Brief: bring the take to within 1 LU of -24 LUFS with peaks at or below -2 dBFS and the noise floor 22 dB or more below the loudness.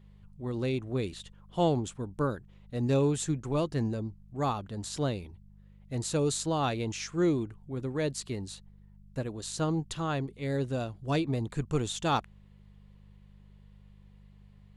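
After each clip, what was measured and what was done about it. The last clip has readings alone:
hum 50 Hz; highest harmonic 200 Hz; hum level -53 dBFS; loudness -32.0 LUFS; peak level -15.5 dBFS; loudness target -24.0 LUFS
-> de-hum 50 Hz, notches 4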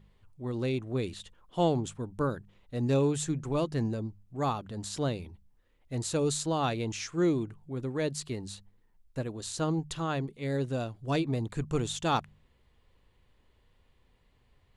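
hum not found; loudness -32.0 LUFS; peak level -15.5 dBFS; loudness target -24.0 LUFS
-> trim +8 dB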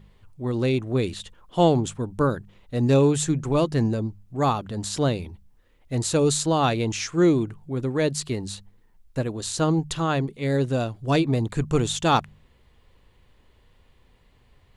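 loudness -24.0 LUFS; peak level -7.5 dBFS; noise floor -59 dBFS

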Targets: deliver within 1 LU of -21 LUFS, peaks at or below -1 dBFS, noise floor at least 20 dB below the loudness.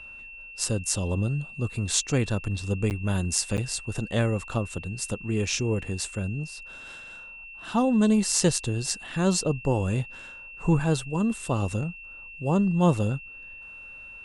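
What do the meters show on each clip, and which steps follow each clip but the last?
dropouts 2; longest dropout 9.2 ms; steady tone 2.7 kHz; tone level -41 dBFS; loudness -26.5 LUFS; peak level -5.5 dBFS; loudness target -21.0 LUFS
-> interpolate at 2.90/3.57 s, 9.2 ms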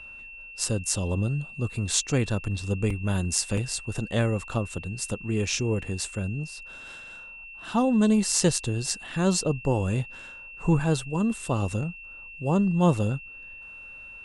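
dropouts 0; steady tone 2.7 kHz; tone level -41 dBFS
-> band-stop 2.7 kHz, Q 30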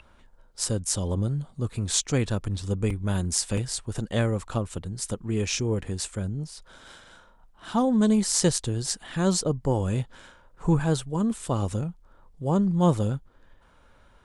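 steady tone not found; loudness -26.5 LUFS; peak level -5.5 dBFS; loudness target -21.0 LUFS
-> trim +5.5 dB; peak limiter -1 dBFS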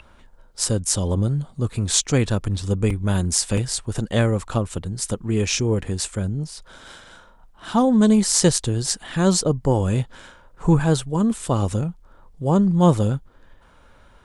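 loudness -21.0 LUFS; peak level -1.0 dBFS; noise floor -51 dBFS

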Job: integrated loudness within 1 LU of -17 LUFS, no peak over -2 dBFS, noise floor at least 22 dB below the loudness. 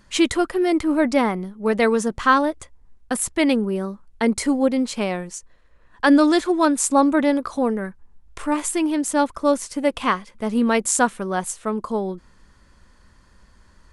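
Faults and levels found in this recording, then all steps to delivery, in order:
loudness -21.0 LUFS; peak level -4.0 dBFS; loudness target -17.0 LUFS
-> trim +4 dB; peak limiter -2 dBFS

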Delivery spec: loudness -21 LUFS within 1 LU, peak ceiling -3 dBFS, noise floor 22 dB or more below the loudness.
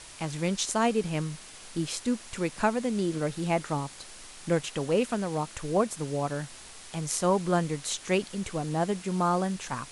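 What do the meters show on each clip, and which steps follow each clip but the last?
noise floor -47 dBFS; noise floor target -52 dBFS; loudness -29.5 LUFS; peak level -11.5 dBFS; loudness target -21.0 LUFS
-> noise reduction 6 dB, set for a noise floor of -47 dBFS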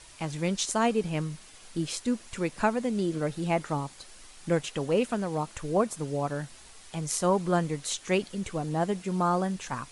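noise floor -51 dBFS; noise floor target -52 dBFS
-> noise reduction 6 dB, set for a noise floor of -51 dBFS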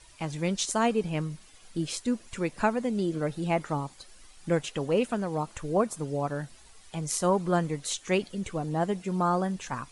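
noise floor -54 dBFS; loudness -29.5 LUFS; peak level -12.0 dBFS; loudness target -21.0 LUFS
-> trim +8.5 dB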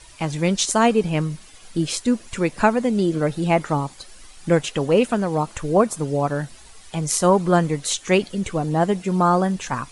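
loudness -21.0 LUFS; peak level -3.5 dBFS; noise floor -46 dBFS

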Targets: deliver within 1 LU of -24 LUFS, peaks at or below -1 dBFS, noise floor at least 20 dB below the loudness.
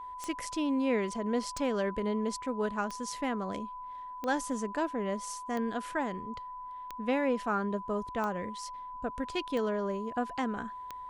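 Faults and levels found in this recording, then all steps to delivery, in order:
clicks found 9; steady tone 1 kHz; tone level -40 dBFS; loudness -34.0 LUFS; peak level -17.0 dBFS; loudness target -24.0 LUFS
-> de-click; band-stop 1 kHz, Q 30; trim +10 dB

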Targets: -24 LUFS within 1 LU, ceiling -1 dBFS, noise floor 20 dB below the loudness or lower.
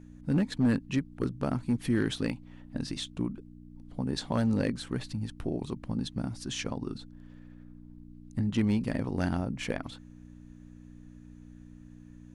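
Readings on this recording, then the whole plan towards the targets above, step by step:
clipped samples 0.3%; clipping level -19.0 dBFS; hum 60 Hz; highest harmonic 300 Hz; hum level -49 dBFS; loudness -32.0 LUFS; peak level -19.0 dBFS; loudness target -24.0 LUFS
-> clip repair -19 dBFS; de-hum 60 Hz, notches 5; trim +8 dB

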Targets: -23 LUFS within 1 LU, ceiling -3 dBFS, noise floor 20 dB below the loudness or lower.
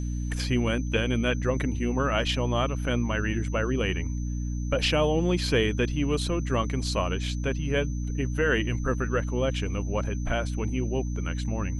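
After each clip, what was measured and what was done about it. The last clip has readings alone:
hum 60 Hz; highest harmonic 300 Hz; hum level -27 dBFS; steady tone 6.1 kHz; tone level -48 dBFS; loudness -27.5 LUFS; peak level -11.0 dBFS; loudness target -23.0 LUFS
-> de-hum 60 Hz, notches 5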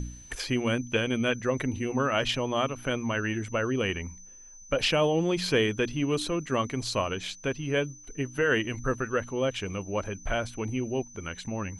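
hum not found; steady tone 6.1 kHz; tone level -48 dBFS
-> band-stop 6.1 kHz, Q 30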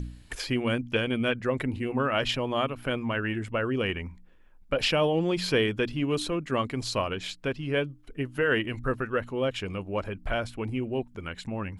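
steady tone not found; loudness -29.0 LUFS; peak level -11.5 dBFS; loudness target -23.0 LUFS
-> trim +6 dB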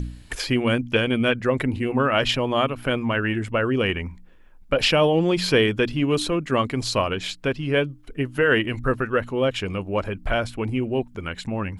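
loudness -23.0 LUFS; peak level -5.5 dBFS; noise floor -47 dBFS

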